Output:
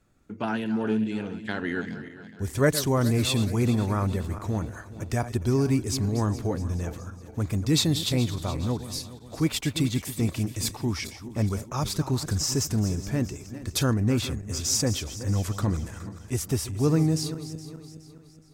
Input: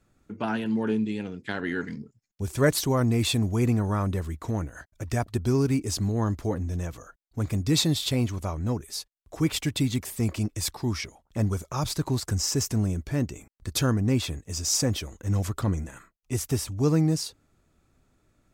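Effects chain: backward echo that repeats 209 ms, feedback 63%, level -12.5 dB

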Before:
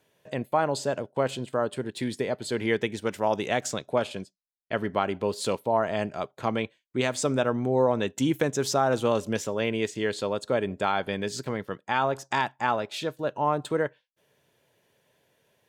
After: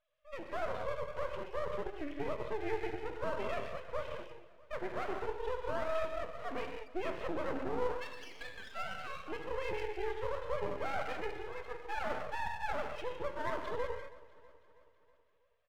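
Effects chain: formants replaced by sine waves; 7.87–9.23 s: high-pass 1 kHz 24 dB/octave; peak limiter -22 dBFS, peak gain reduction 8.5 dB; gated-style reverb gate 240 ms flat, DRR 1.5 dB; half-wave rectifier; on a send: feedback delay 323 ms, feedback 57%, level -20 dB; on the sum: trim -5.5 dB

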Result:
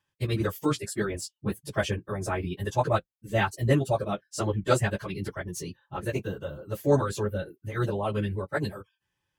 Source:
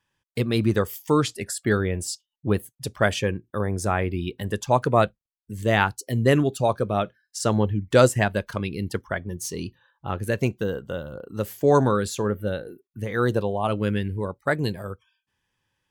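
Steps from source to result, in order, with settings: comb of notches 240 Hz; plain phase-vocoder stretch 0.59×

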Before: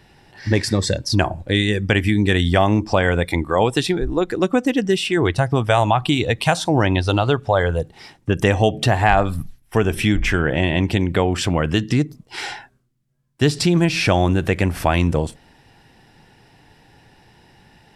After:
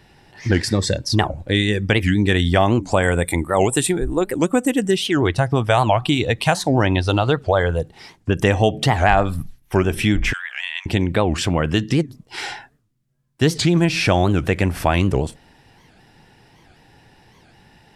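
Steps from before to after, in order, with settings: 2.84–4.91 s: resonant high shelf 6.6 kHz +8.5 dB, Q 3; 10.33–10.86 s: Bessel high-pass 1.9 kHz, order 8; warped record 78 rpm, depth 250 cents

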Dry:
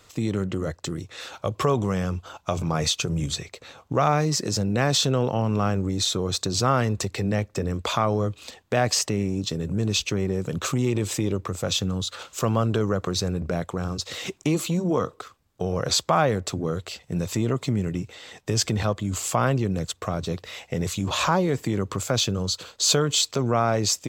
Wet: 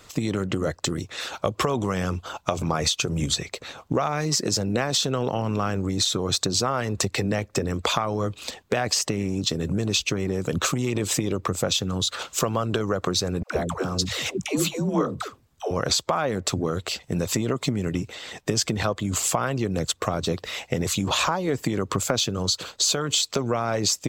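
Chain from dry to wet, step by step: harmonic-percussive split harmonic -8 dB; compression 6:1, threshold -28 dBFS, peak gain reduction 10.5 dB; 13.43–15.71 s: phase dispersion lows, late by 131 ms, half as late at 370 Hz; trim +8 dB

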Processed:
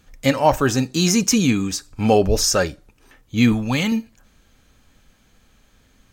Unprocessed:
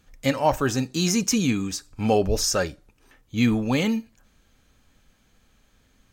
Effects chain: 3.52–3.92 s: peaking EQ 410 Hz -9.5 dB 1.3 oct; trim +5 dB

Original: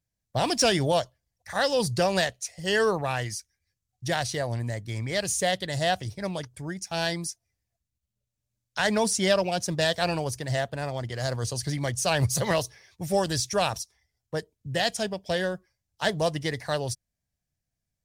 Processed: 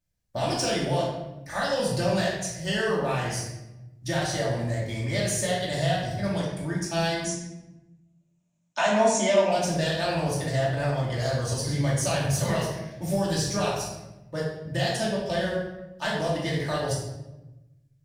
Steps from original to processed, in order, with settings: compression, threshold -27 dBFS, peak gain reduction 9.5 dB; 7.24–9.51 s: cabinet simulation 210–8600 Hz, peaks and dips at 260 Hz +9 dB, 660 Hz +10 dB, 980 Hz +7 dB, 2.5 kHz +5 dB, 4.7 kHz -8 dB, 6.8 kHz +9 dB; simulated room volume 430 m³, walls mixed, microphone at 2.6 m; trim -3 dB

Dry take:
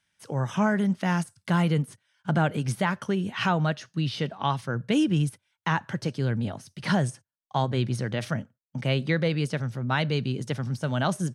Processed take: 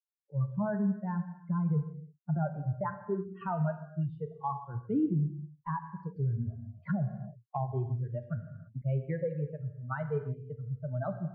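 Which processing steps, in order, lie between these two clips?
expander on every frequency bin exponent 3; low-pass 1.2 kHz 24 dB/octave; bass shelf 60 Hz +10.5 dB; peak limiter -27 dBFS, peak gain reduction 9 dB; gated-style reverb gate 360 ms falling, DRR 7.5 dB; 6.16–8.82 s: three bands compressed up and down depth 70%; trim +3 dB

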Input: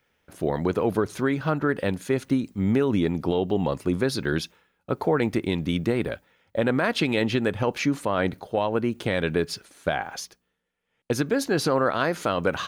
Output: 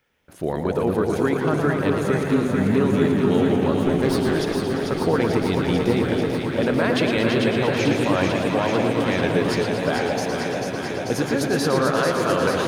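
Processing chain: 3.76–4.34 s: comb filter that takes the minimum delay 7.8 ms; echo whose repeats swap between lows and highs 221 ms, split 840 Hz, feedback 90%, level -4 dB; modulated delay 115 ms, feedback 74%, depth 102 cents, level -7 dB

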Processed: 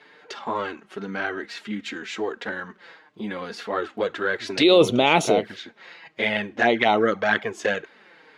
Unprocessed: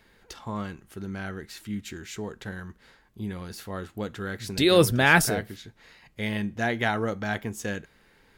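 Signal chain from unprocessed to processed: high-pass 350 Hz 12 dB/octave; touch-sensitive flanger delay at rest 7 ms, full sweep at -23 dBFS; low-pass 3.6 kHz 12 dB/octave; loudness maximiser +19 dB; trim -5.5 dB

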